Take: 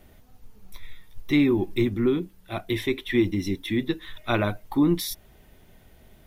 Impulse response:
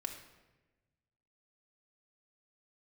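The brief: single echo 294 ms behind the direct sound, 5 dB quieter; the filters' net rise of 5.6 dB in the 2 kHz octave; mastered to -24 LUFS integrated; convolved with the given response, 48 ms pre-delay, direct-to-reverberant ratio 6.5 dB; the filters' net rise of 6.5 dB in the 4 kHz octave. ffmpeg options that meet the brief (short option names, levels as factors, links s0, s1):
-filter_complex "[0:a]equalizer=f=2000:t=o:g=5,equalizer=f=4000:t=o:g=6,aecho=1:1:294:0.562,asplit=2[s0][s1];[1:a]atrim=start_sample=2205,adelay=48[s2];[s1][s2]afir=irnorm=-1:irlink=0,volume=0.531[s3];[s0][s3]amix=inputs=2:normalize=0,volume=0.841"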